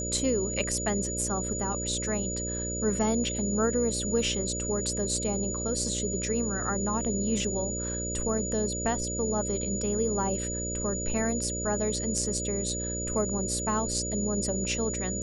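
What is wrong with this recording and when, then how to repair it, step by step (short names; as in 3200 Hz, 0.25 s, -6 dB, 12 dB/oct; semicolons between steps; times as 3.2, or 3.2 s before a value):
buzz 60 Hz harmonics 10 -35 dBFS
tone 6900 Hz -33 dBFS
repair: de-hum 60 Hz, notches 10; notch 6900 Hz, Q 30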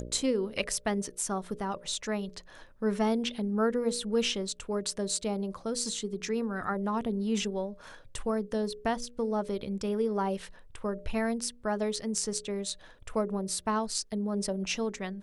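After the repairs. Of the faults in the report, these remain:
none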